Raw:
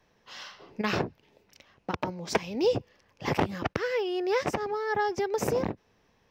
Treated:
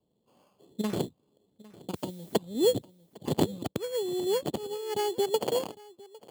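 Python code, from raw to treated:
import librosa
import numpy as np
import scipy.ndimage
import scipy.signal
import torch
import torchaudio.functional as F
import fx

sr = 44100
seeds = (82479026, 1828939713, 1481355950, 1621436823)

y = fx.wiener(x, sr, points=25)
y = fx.filter_sweep_bandpass(y, sr, from_hz=250.0, to_hz=1900.0, start_s=4.87, end_s=6.03, q=0.75)
y = fx.sample_hold(y, sr, seeds[0], rate_hz=3800.0, jitter_pct=0)
y = fx.dmg_noise_colour(y, sr, seeds[1], colour='blue', level_db=-55.0, at=(1.94, 2.34), fade=0.02)
y = y + 10.0 ** (-16.5 / 20.0) * np.pad(y, (int(805 * sr / 1000.0), 0))[:len(y)]
y = fx.upward_expand(y, sr, threshold_db=-40.0, expansion=1.5)
y = y * 10.0 ** (5.0 / 20.0)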